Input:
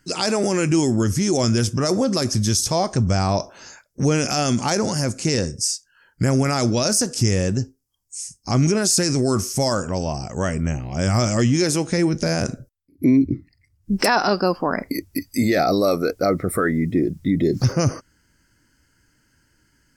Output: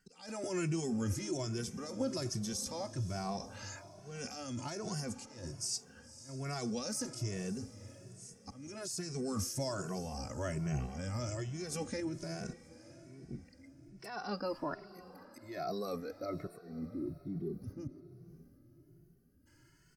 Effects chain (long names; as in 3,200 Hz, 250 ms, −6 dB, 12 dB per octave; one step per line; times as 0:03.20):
gain on a spectral selection 0:16.61–0:19.46, 430–9,900 Hz −20 dB
reversed playback
downward compressor 16 to 1, threshold −27 dBFS, peak gain reduction 15.5 dB
reversed playback
volume swells 453 ms
brickwall limiter −23 dBFS, peak gain reduction 8.5 dB
sample-and-hold tremolo
feedback delay with all-pass diffusion 534 ms, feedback 43%, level −15.5 dB
barber-pole flanger 2.2 ms +1.2 Hz